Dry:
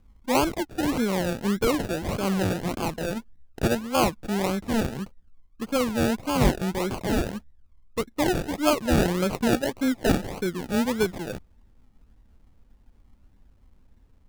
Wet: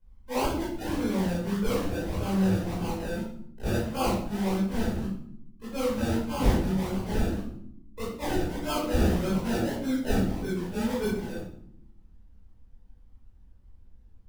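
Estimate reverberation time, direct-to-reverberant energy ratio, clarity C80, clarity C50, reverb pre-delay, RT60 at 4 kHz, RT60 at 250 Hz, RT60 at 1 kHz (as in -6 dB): 0.70 s, -11.5 dB, 5.5 dB, 0.5 dB, 17 ms, 0.50 s, 1.3 s, 0.60 s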